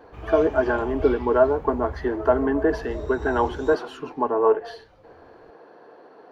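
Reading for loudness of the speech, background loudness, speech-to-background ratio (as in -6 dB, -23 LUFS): -22.5 LUFS, -38.0 LUFS, 15.5 dB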